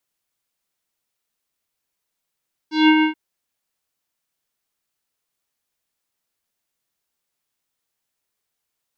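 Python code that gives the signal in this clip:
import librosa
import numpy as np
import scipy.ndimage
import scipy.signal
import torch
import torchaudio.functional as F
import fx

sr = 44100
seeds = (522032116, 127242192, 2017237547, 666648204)

y = fx.sub_voice(sr, note=63, wave='square', cutoff_hz=2600.0, q=2.5, env_oct=1.0, env_s=0.2, attack_ms=171.0, decay_s=0.07, sustain_db=-4.5, release_s=0.11, note_s=0.32, slope=24)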